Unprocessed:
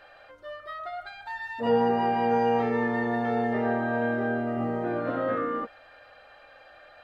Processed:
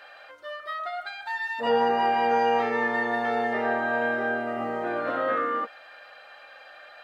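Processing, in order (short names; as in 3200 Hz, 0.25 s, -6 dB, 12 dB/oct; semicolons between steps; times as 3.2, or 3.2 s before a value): HPF 990 Hz 6 dB/oct; gain +7 dB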